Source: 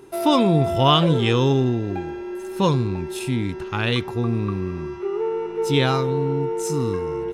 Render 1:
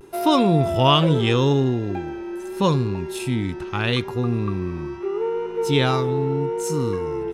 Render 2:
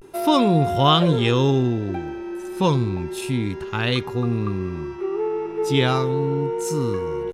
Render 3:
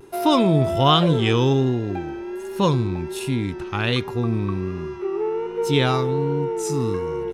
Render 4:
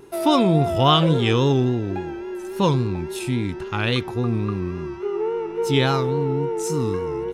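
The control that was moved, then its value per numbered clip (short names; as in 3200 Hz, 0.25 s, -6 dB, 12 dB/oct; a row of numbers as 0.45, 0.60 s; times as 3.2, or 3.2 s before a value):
vibrato, rate: 0.78, 0.32, 1.3, 3.6 Hz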